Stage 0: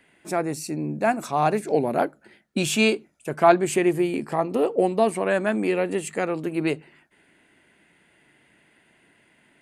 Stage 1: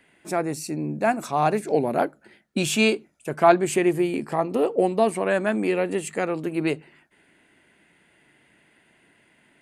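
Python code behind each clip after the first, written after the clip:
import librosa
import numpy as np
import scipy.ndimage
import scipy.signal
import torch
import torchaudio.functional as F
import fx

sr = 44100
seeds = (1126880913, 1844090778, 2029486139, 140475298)

y = x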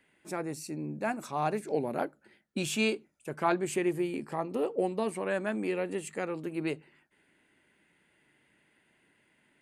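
y = fx.notch(x, sr, hz=690.0, q=12.0)
y = F.gain(torch.from_numpy(y), -8.5).numpy()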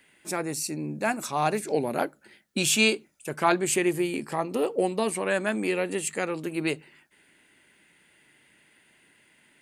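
y = fx.high_shelf(x, sr, hz=2300.0, db=9.5)
y = F.gain(torch.from_numpy(y), 4.0).numpy()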